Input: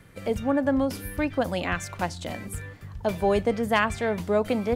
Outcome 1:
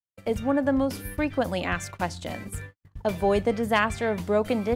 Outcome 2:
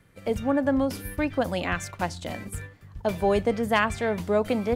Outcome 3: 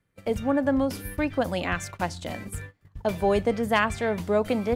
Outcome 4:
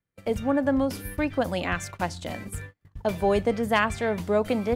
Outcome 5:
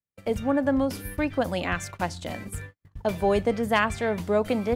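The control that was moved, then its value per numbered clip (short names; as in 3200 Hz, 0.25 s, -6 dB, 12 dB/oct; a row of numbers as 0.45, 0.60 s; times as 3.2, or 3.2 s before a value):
gate, range: -59, -7, -22, -34, -47 dB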